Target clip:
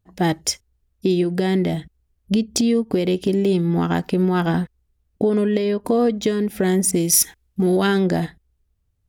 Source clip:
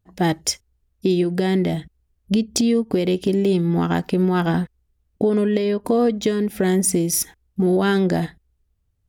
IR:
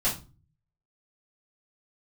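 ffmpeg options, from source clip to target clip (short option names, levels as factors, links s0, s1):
-filter_complex "[0:a]asettb=1/sr,asplit=3[s0][s1][s2];[s0]atrim=end=6.914[s3];[s1]atrim=start=6.91:end=7.87,asetpts=PTS-STARTPTS,afade=t=in:d=0.004:c=qsin,afade=t=out:st=0.956:d=0.004:c=qsin,adynamicequalizer=threshold=0.01:dfrequency=1500:dqfactor=0.7:tfrequency=1500:tqfactor=0.7:attack=5:release=100:ratio=0.375:range=3:mode=boostabove:tftype=highshelf[s4];[s2]atrim=start=7.866[s5];[s3][s4]acrossfade=d=0.004:c1=hsin:c2=qsin[s6];[s6][s5]acrossfade=d=0.004:c1=qsin:c2=hsin"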